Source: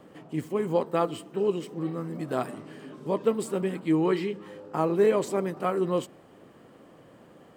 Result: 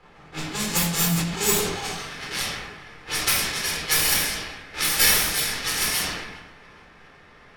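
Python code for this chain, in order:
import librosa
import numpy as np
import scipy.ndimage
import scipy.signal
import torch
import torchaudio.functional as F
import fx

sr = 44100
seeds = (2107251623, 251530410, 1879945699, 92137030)

p1 = fx.envelope_flatten(x, sr, power=0.1)
p2 = fx.quant_dither(p1, sr, seeds[0], bits=6, dither='triangular')
p3 = p1 + (p2 * librosa.db_to_amplitude(-8.0))
p4 = fx.filter_sweep_highpass(p3, sr, from_hz=73.0, to_hz=1800.0, start_s=0.79, end_s=2.2, q=2.9)
p5 = (np.kron(p4[::6], np.eye(6)[0]) * 6)[:len(p4)]
p6 = fx.notch(p5, sr, hz=950.0, q=24.0)
p7 = p6 + fx.echo_feedback(p6, sr, ms=410, feedback_pct=45, wet_db=-15.0, dry=0)
p8 = fx.room_shoebox(p7, sr, seeds[1], volume_m3=1000.0, walls='furnished', distance_m=4.1)
p9 = fx.env_lowpass(p8, sr, base_hz=1300.0, full_db=-6.0)
p10 = fx.sustainer(p9, sr, db_per_s=45.0)
y = p10 * librosa.db_to_amplitude(-11.5)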